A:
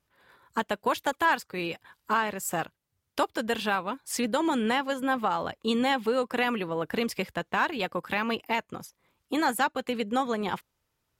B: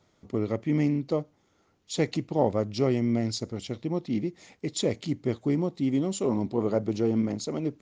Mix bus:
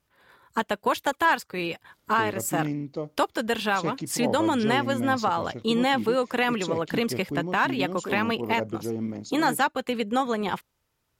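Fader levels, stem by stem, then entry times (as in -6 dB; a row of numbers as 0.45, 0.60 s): +2.5, -5.0 dB; 0.00, 1.85 s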